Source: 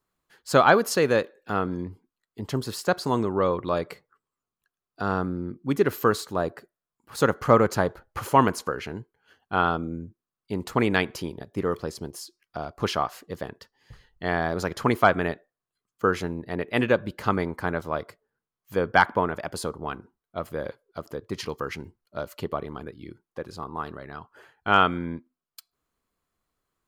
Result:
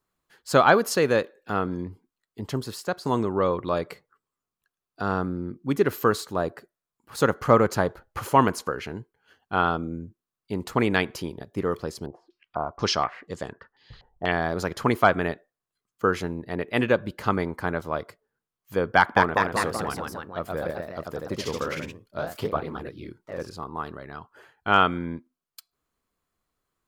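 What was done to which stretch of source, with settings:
0:02.44–0:03.05: fade out, to −7.5 dB
0:12.06–0:14.32: low-pass on a step sequencer 4.1 Hz 760–7,700 Hz
0:18.96–0:23.55: delay with pitch and tempo change per echo 203 ms, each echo +1 semitone, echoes 3

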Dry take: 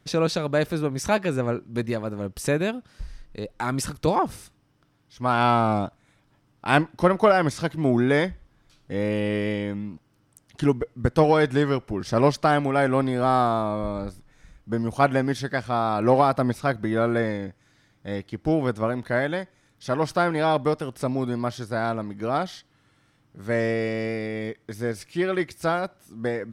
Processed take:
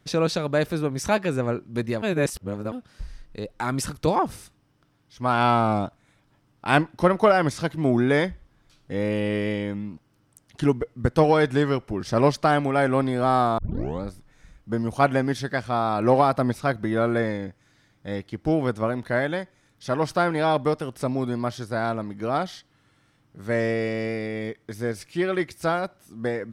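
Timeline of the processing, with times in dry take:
0:02.02–0:02.72: reverse
0:13.58: tape start 0.44 s

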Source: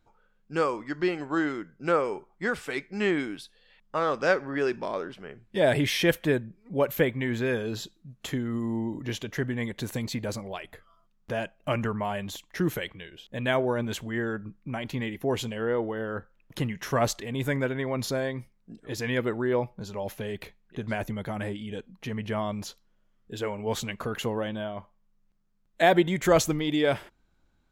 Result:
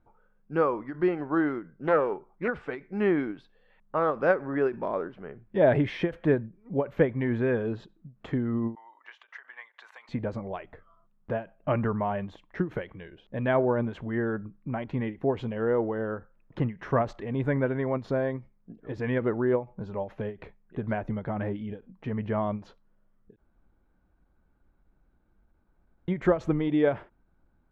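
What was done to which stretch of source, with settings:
0:01.75–0:02.48: highs frequency-modulated by the lows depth 0.27 ms
0:08.75–0:10.09: high-pass filter 990 Hz 24 dB per octave
0:23.36–0:26.08: fill with room tone
whole clip: low-pass filter 1,400 Hz 12 dB per octave; every ending faded ahead of time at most 230 dB per second; level +2 dB

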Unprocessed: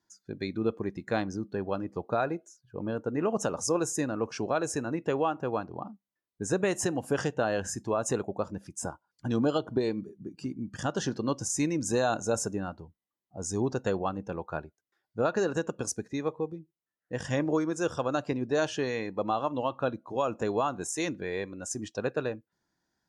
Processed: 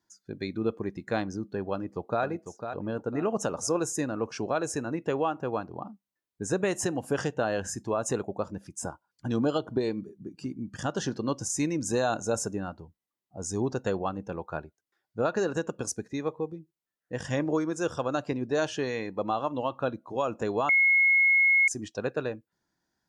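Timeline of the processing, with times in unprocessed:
0:01.72–0:02.23: delay throw 500 ms, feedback 35%, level −8 dB
0:20.69–0:21.68: beep over 2,170 Hz −18 dBFS

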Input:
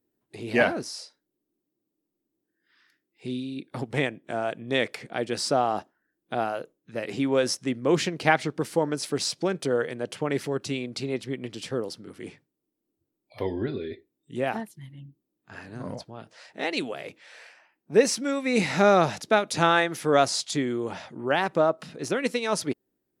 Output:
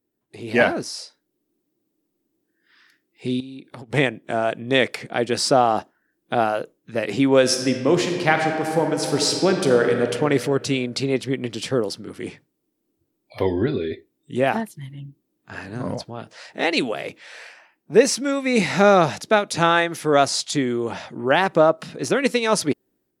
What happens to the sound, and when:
0:03.40–0:03.92: downward compressor 16 to 1, threshold −41 dBFS
0:07.40–0:10.12: thrown reverb, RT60 2.1 s, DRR 3.5 dB
whole clip: automatic gain control gain up to 8 dB

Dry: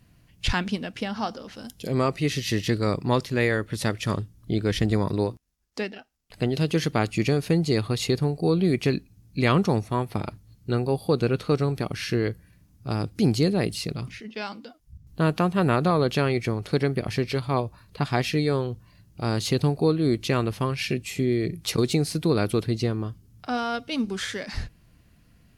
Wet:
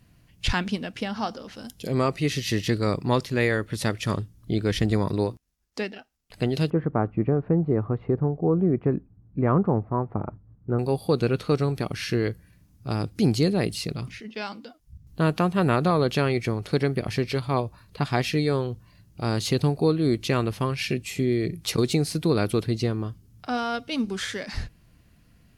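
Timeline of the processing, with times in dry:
0:06.70–0:10.79: low-pass filter 1,300 Hz 24 dB per octave

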